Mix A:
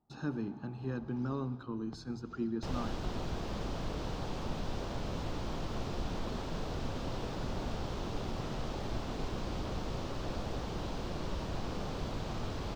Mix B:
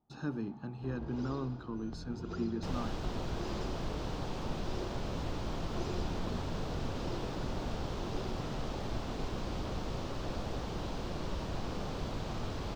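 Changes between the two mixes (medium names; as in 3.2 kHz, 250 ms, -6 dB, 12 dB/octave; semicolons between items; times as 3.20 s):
speech: send -9.0 dB; first sound +11.5 dB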